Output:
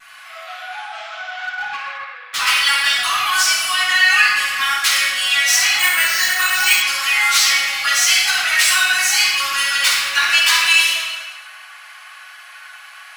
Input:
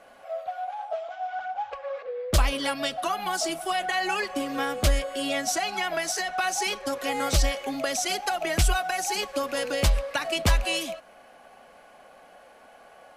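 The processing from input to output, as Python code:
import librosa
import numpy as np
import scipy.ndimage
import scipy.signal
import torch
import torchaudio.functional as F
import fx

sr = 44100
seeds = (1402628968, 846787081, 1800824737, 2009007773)

p1 = fx.tracing_dist(x, sr, depth_ms=0.022)
p2 = scipy.signal.sosfilt(scipy.signal.cheby2(4, 60, 400.0, 'highpass', fs=sr, output='sos'), p1)
p3 = fx.vibrato(p2, sr, rate_hz=0.43, depth_cents=6.0)
p4 = fx.echo_feedback(p3, sr, ms=107, feedback_pct=56, wet_db=-14)
p5 = fx.room_shoebox(p4, sr, seeds[0], volume_m3=710.0, walls='mixed', distance_m=8.9)
p6 = fx.resample_bad(p5, sr, factor=4, down='filtered', up='hold', at=(5.79, 6.82))
p7 = np.clip(p6, -10.0 ** (-28.5 / 20.0), 10.0 ** (-28.5 / 20.0))
p8 = p6 + (p7 * 10.0 ** (-3.0 / 20.0))
p9 = fx.high_shelf(p8, sr, hz=3500.0, db=-10.5, at=(1.96, 2.46), fade=0.02)
y = p9 * 10.0 ** (1.0 / 20.0)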